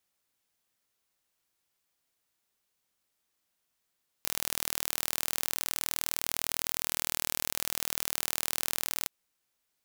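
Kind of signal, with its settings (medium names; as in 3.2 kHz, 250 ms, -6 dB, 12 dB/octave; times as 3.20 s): pulse train 39.7 per s, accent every 0, -3.5 dBFS 4.83 s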